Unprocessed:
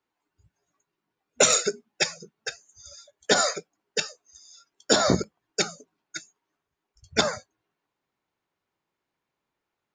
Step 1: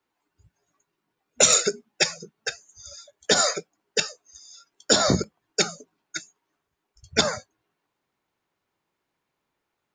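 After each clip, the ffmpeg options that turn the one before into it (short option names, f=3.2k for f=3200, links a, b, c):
-filter_complex "[0:a]acrossover=split=190|3000[a][b][c];[b]acompressor=threshold=-23dB:ratio=6[d];[a][d][c]amix=inputs=3:normalize=0,volume=3.5dB"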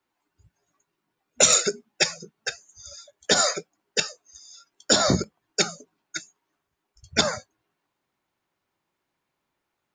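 -af "bandreject=f=450:w=12"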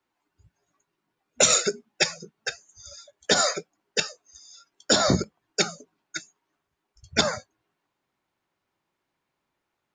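-af "highshelf=f=9.8k:g=-8"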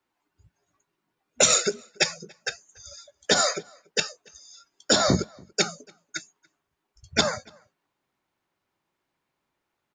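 -filter_complex "[0:a]asplit=2[a][b];[b]adelay=285.7,volume=-27dB,highshelf=f=4k:g=-6.43[c];[a][c]amix=inputs=2:normalize=0"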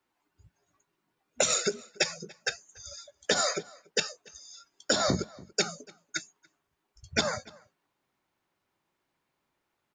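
-af "acompressor=threshold=-22dB:ratio=10"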